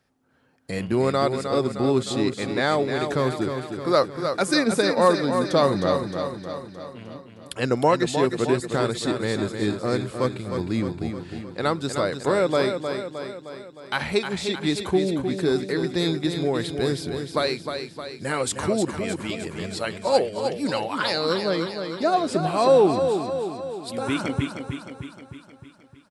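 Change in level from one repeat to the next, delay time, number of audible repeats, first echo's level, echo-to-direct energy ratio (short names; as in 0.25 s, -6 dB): -5.0 dB, 0.309 s, 6, -7.0 dB, -5.5 dB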